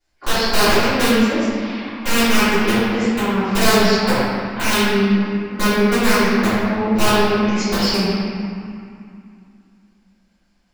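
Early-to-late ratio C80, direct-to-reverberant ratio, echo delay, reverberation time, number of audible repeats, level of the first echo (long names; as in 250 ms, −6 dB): −2.5 dB, −18.5 dB, no echo audible, 2.4 s, no echo audible, no echo audible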